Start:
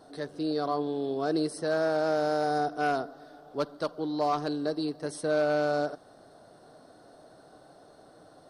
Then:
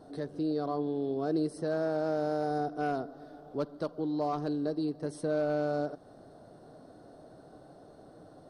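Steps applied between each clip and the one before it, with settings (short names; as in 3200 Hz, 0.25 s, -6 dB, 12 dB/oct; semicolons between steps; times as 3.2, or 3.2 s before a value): tilt shelf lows +6 dB, about 650 Hz; in parallel at +1.5 dB: compressor, threshold -35 dBFS, peak gain reduction 13 dB; on the sum: gain -7 dB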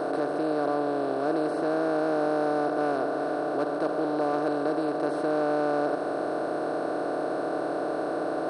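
per-bin compression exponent 0.2; tone controls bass -10 dB, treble -10 dB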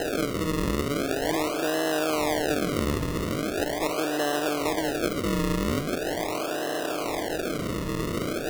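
decimation with a swept rate 38×, swing 100% 0.41 Hz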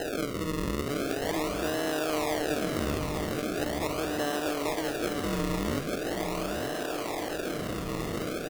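echo 0.875 s -6.5 dB; gain -4.5 dB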